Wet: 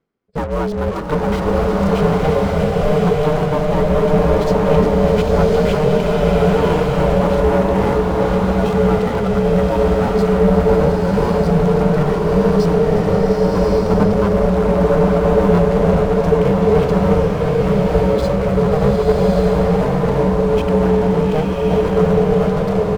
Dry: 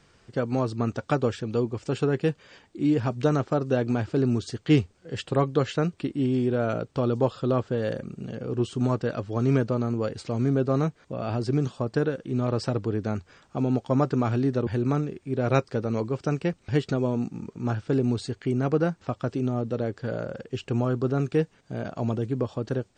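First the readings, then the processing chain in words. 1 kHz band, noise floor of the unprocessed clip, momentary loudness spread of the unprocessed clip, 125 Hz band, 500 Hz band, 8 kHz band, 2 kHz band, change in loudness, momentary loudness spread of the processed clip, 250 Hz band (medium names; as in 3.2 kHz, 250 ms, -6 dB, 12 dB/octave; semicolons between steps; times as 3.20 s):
+14.0 dB, -61 dBFS, 8 LU, +9.0 dB, +14.0 dB, no reading, +11.0 dB, +11.5 dB, 3 LU, +9.5 dB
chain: comb 1.1 ms, depth 54%; feedback delay 355 ms, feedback 55%, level -10 dB; spectral noise reduction 19 dB; treble shelf 6.1 kHz -10 dB; in parallel at -7 dB: fuzz box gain 48 dB, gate -43 dBFS; on the sum: ring modulator 310 Hz; reverse; upward compressor, threshold -35 dBFS; reverse; treble shelf 2.3 kHz -12 dB; swelling reverb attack 1150 ms, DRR -3 dB; trim +2.5 dB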